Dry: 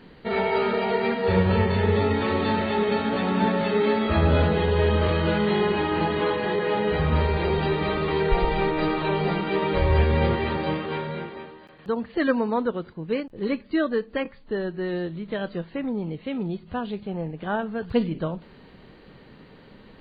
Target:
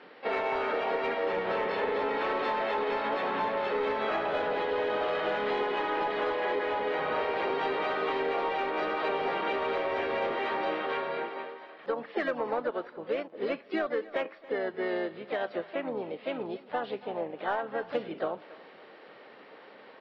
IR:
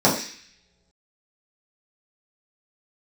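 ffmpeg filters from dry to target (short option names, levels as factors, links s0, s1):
-filter_complex "[0:a]acrossover=split=940[s0][s1];[s0]acontrast=32[s2];[s2][s1]amix=inputs=2:normalize=0,highpass=480,lowpass=3700,bandreject=f=970:w=12,asplit=2[s3][s4];[s4]highpass=f=720:p=1,volume=4.47,asoftclip=type=tanh:threshold=0.355[s5];[s3][s5]amix=inputs=2:normalize=0,lowpass=f=2800:p=1,volume=0.501,acompressor=threshold=0.0794:ratio=10,asplit=2[s6][s7];[s7]aecho=0:1:281|562:0.1|0.024[s8];[s6][s8]amix=inputs=2:normalize=0,asplit=3[s9][s10][s11];[s10]asetrate=29433,aresample=44100,atempo=1.49831,volume=0.2[s12];[s11]asetrate=52444,aresample=44100,atempo=0.840896,volume=0.447[s13];[s9][s12][s13]amix=inputs=3:normalize=0,volume=0.531"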